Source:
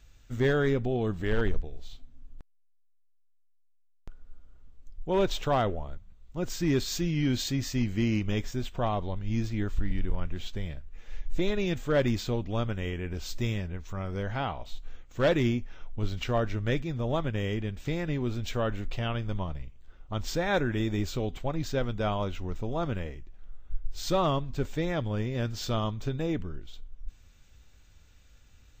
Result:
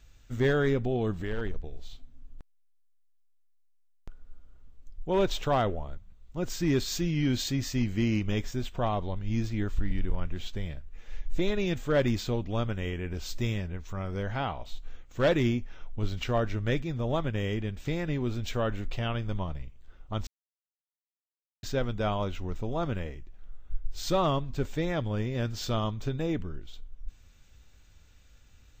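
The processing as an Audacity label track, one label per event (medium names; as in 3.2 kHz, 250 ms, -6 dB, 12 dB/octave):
1.200000	1.640000	compression 2:1, threshold -31 dBFS
20.270000	21.630000	mute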